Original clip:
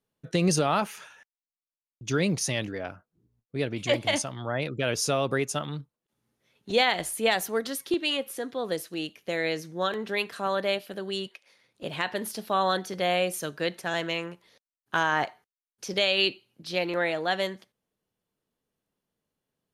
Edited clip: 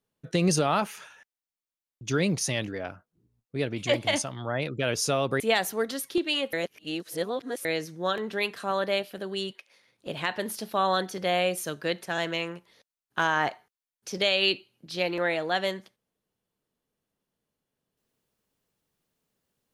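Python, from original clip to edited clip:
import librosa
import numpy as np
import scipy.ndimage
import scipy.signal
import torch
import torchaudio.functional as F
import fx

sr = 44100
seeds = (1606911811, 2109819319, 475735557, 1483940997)

y = fx.edit(x, sr, fx.cut(start_s=5.4, length_s=1.76),
    fx.reverse_span(start_s=8.29, length_s=1.12), tone=tone)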